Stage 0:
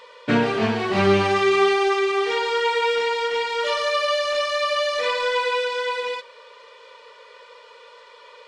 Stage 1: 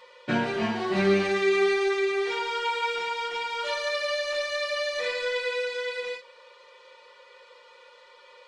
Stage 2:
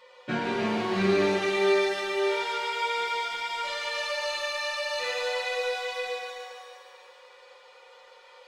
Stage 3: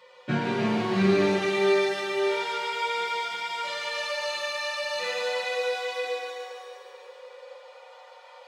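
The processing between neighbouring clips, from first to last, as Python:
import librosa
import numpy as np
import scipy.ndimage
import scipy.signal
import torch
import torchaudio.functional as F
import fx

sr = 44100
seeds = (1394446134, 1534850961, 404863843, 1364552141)

y1 = x + 0.81 * np.pad(x, (int(5.6 * sr / 1000.0), 0))[:len(x)]
y1 = fx.end_taper(y1, sr, db_per_s=190.0)
y1 = y1 * 10.0 ** (-7.5 / 20.0)
y2 = fx.echo_feedback(y1, sr, ms=147, feedback_pct=54, wet_db=-10.5)
y2 = fx.rev_shimmer(y2, sr, seeds[0], rt60_s=1.6, semitones=7, shimmer_db=-8, drr_db=0.5)
y2 = y2 * 10.0 ** (-4.0 / 20.0)
y3 = fx.filter_sweep_highpass(y2, sr, from_hz=130.0, to_hz=660.0, start_s=4.36, end_s=7.99, q=3.3)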